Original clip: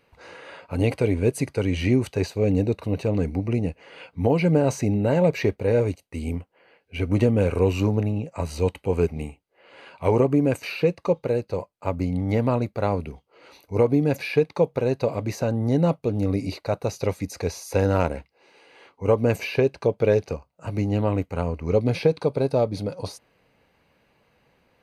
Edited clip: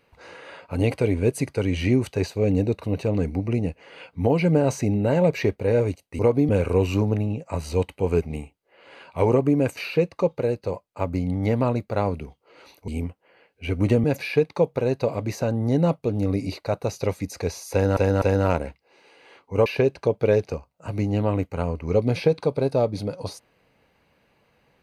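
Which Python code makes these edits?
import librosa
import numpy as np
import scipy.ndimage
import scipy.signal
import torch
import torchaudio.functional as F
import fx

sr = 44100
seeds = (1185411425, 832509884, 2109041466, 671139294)

y = fx.edit(x, sr, fx.swap(start_s=6.19, length_s=1.16, other_s=13.74, other_length_s=0.3),
    fx.repeat(start_s=17.72, length_s=0.25, count=3),
    fx.cut(start_s=19.16, length_s=0.29), tone=tone)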